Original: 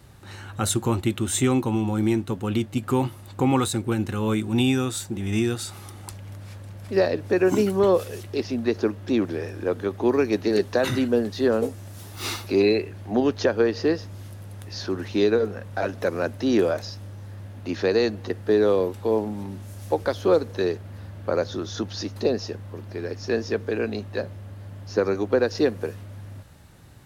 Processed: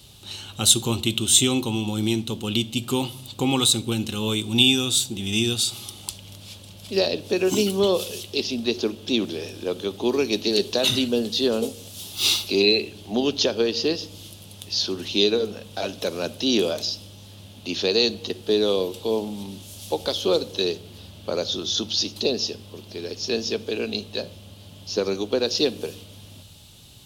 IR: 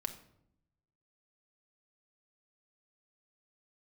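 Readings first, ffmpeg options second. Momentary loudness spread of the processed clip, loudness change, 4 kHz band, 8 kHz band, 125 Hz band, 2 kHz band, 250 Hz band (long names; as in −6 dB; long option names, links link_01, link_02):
17 LU, +1.5 dB, +13.5 dB, +9.5 dB, −3.5 dB, +1.0 dB, −1.5 dB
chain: -filter_complex "[0:a]highshelf=frequency=2400:width_type=q:width=3:gain=10,asplit=2[link_01][link_02];[1:a]atrim=start_sample=2205[link_03];[link_02][link_03]afir=irnorm=-1:irlink=0,volume=-4dB[link_04];[link_01][link_04]amix=inputs=2:normalize=0,volume=-5.5dB"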